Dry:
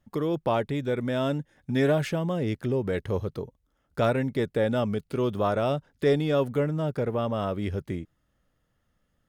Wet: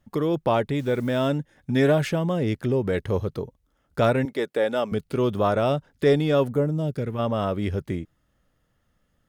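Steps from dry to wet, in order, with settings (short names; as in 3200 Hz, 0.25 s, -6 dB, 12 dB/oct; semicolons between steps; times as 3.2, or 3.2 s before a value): 0.79–1.27 level-crossing sampler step -50 dBFS; 4.25–4.92 HPF 360 Hz 12 dB/oct; 6.49–7.18 bell 3500 Hz -> 550 Hz -14 dB 1.5 oct; gain +3.5 dB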